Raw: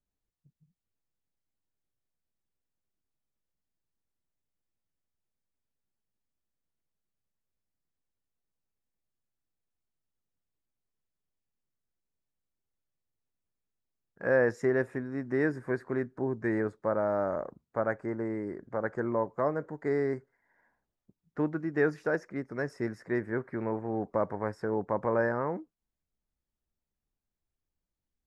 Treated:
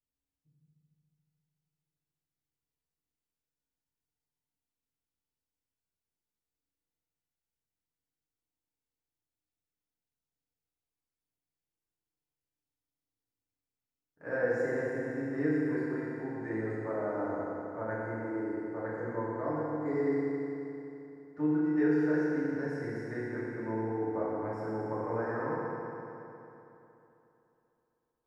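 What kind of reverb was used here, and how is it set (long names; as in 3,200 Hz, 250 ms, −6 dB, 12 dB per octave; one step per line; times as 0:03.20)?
feedback delay network reverb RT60 3.1 s, high-frequency decay 0.95×, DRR −9 dB
level −13 dB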